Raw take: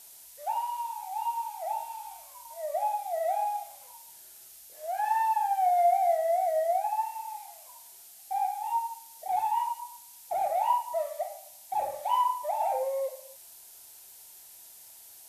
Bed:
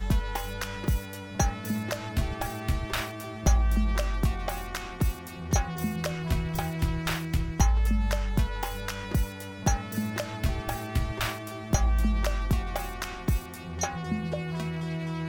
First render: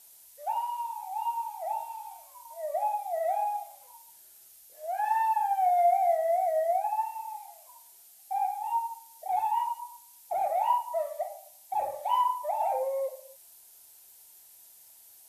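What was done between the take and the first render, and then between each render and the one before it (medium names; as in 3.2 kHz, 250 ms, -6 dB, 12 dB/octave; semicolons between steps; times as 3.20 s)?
noise reduction 6 dB, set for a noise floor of -51 dBFS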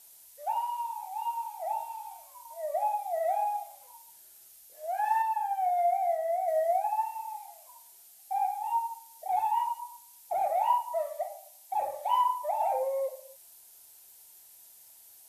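1.06–1.60 s: high-pass 780 Hz; 5.22–6.48 s: gain -3.5 dB; 10.94–12.06 s: bass shelf 200 Hz -8 dB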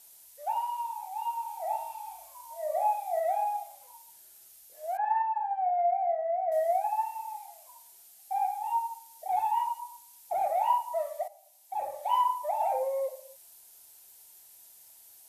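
1.44–3.20 s: flutter echo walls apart 6.1 m, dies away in 0.38 s; 4.97–6.52 s: low-pass 1.6 kHz; 11.28–12.13 s: fade in, from -12 dB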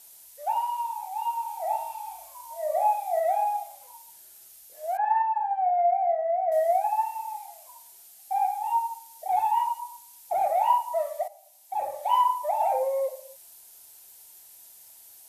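trim +4 dB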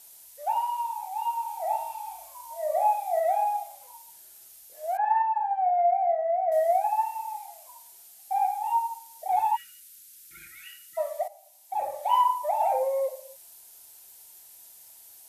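9.56–10.98 s: spectral selection erased 350–1300 Hz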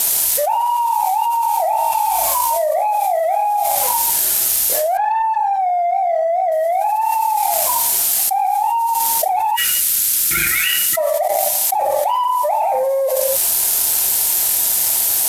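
waveshaping leveller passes 1; level flattener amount 100%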